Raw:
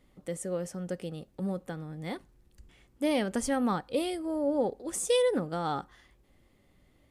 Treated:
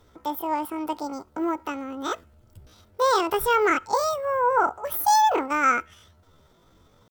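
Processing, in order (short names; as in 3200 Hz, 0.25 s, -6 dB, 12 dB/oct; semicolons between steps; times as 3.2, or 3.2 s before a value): bell 760 Hz +9.5 dB 0.31 oct; pitch shift +9.5 st; gain +6 dB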